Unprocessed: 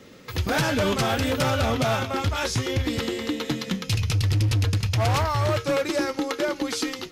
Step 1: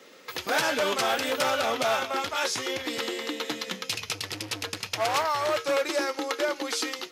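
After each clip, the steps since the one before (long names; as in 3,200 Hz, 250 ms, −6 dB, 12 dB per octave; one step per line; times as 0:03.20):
high-pass filter 450 Hz 12 dB per octave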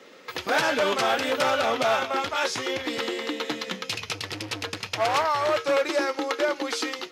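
high-shelf EQ 6,300 Hz −10.5 dB
level +3 dB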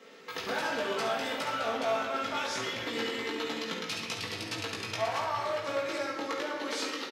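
downward compressor, threshold −26 dBFS, peak gain reduction 8 dB
on a send: ambience of single reflections 18 ms −3.5 dB, 70 ms −8.5 dB
on the sum: rectangular room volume 1,500 cubic metres, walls mixed, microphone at 1.6 metres
level −7 dB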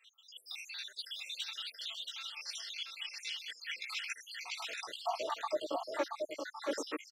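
time-frequency cells dropped at random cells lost 79%
high-pass filter sweep 3,400 Hz → 330 Hz, 0:03.18–0:05.44
single-tap delay 678 ms −4 dB
level −2 dB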